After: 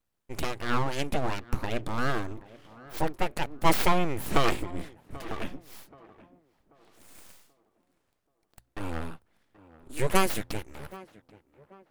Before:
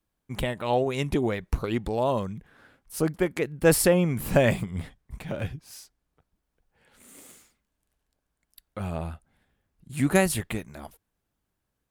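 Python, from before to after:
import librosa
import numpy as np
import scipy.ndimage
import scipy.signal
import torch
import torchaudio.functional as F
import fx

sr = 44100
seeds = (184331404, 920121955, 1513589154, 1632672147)

y = np.abs(x)
y = fx.hum_notches(y, sr, base_hz=60, count=2)
y = fx.echo_tape(y, sr, ms=783, feedback_pct=43, wet_db=-17.5, lp_hz=1400.0, drive_db=2.0, wow_cents=40)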